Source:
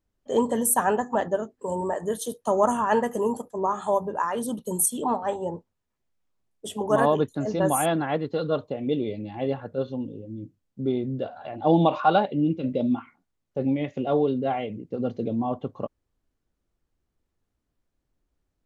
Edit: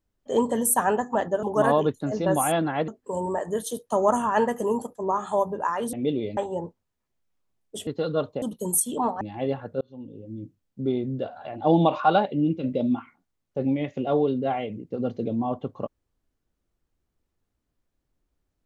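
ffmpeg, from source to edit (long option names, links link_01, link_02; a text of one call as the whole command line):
ffmpeg -i in.wav -filter_complex "[0:a]asplit=9[link_01][link_02][link_03][link_04][link_05][link_06][link_07][link_08][link_09];[link_01]atrim=end=1.432[link_10];[link_02]atrim=start=6.768:end=8.222[link_11];[link_03]atrim=start=1.428:end=4.482[link_12];[link_04]atrim=start=8.768:end=9.212[link_13];[link_05]atrim=start=5.268:end=6.772[link_14];[link_06]atrim=start=8.218:end=8.772[link_15];[link_07]atrim=start=4.478:end=5.272[link_16];[link_08]atrim=start=9.208:end=9.81,asetpts=PTS-STARTPTS,afade=type=out:start_time=0.598:duration=0.004:curve=hsin[link_17];[link_09]atrim=start=9.81,asetpts=PTS-STARTPTS,afade=type=in:duration=0.53[link_18];[link_10][link_11]acrossfade=duration=0.004:curve1=hsin:curve2=hsin[link_19];[link_19][link_12]acrossfade=duration=0.004:curve1=hsin:curve2=hsin[link_20];[link_20][link_13]acrossfade=duration=0.004:curve1=hsin:curve2=hsin[link_21];[link_21][link_14]acrossfade=duration=0.004:curve1=hsin:curve2=hsin[link_22];[link_22][link_15]acrossfade=duration=0.004:curve1=hsin:curve2=hsin[link_23];[link_23][link_16]acrossfade=duration=0.004:curve1=hsin:curve2=hsin[link_24];[link_17][link_18]concat=n=2:v=0:a=1[link_25];[link_24][link_25]acrossfade=duration=0.004:curve1=hsin:curve2=hsin" out.wav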